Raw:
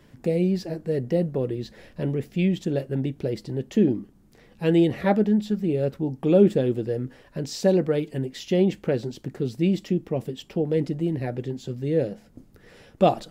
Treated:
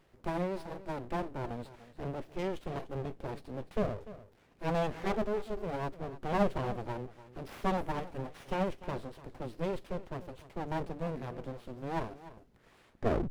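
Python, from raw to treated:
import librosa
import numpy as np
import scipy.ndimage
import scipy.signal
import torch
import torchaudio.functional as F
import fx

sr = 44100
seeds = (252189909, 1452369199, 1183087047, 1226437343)

y = fx.tape_stop_end(x, sr, length_s=0.4)
y = fx.hpss(y, sr, part='percussive', gain_db=-5)
y = np.abs(y)
y = y + 10.0 ** (-16.0 / 20.0) * np.pad(y, (int(296 * sr / 1000.0), 0))[:len(y)]
y = fx.running_max(y, sr, window=5)
y = F.gain(torch.from_numpy(y), -6.0).numpy()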